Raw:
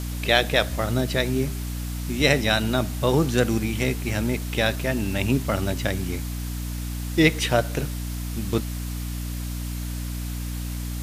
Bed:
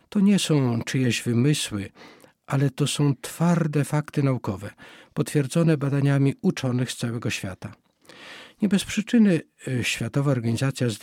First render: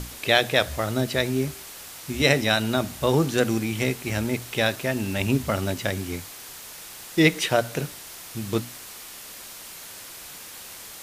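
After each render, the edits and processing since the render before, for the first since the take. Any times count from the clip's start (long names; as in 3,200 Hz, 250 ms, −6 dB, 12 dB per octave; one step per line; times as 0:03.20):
mains-hum notches 60/120/180/240/300 Hz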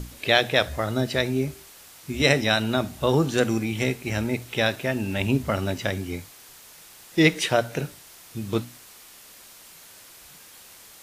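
noise reduction from a noise print 7 dB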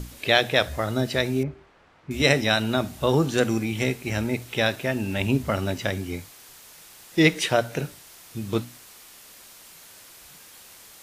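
0:01.43–0:02.11: low-pass filter 1,600 Hz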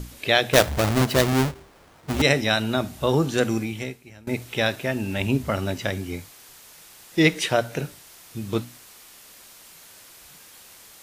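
0:00.53–0:02.22: each half-wave held at its own peak
0:03.60–0:04.27: fade out quadratic, to −22.5 dB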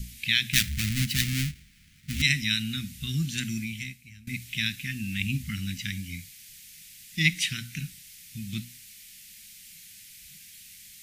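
elliptic band-stop filter 200–2,100 Hz, stop band 70 dB
dynamic equaliser 110 Hz, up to −4 dB, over −41 dBFS, Q 1.2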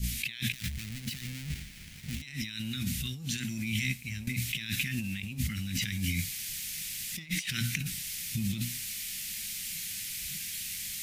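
compressor whose output falls as the input rises −39 dBFS, ratio −1
leveller curve on the samples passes 1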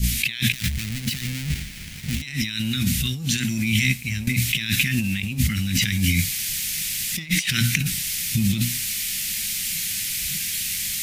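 level +11 dB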